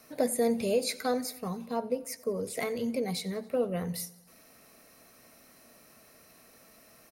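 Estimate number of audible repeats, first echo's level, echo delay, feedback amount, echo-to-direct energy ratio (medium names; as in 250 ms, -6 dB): 4, -21.0 dB, 91 ms, 59%, -19.0 dB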